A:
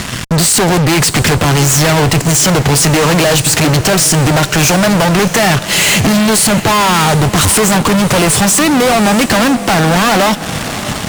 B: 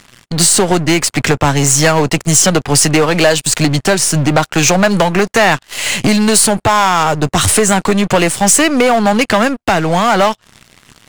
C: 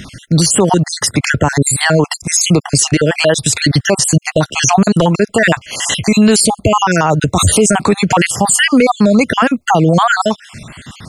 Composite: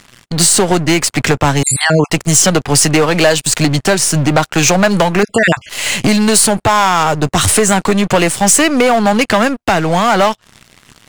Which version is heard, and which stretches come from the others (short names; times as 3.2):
B
1.63–2.1 from C
5.23–5.69 from C
not used: A